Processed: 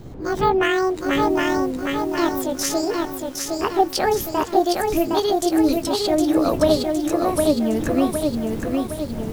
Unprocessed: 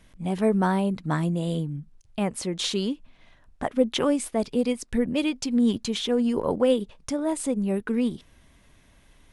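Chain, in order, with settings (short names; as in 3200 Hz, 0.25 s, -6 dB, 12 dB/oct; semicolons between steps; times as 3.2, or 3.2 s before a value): gliding pitch shift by +12 st ending unshifted; wind noise 240 Hz -41 dBFS; lo-fi delay 0.762 s, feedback 55%, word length 8-bit, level -3 dB; gain +4.5 dB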